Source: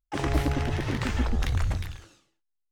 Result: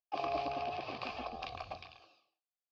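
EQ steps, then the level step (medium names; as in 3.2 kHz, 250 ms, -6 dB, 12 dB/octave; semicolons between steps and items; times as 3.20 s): vowel filter a; four-pole ladder low-pass 5.1 kHz, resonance 75%; band-stop 1.4 kHz, Q 5.5; +16.5 dB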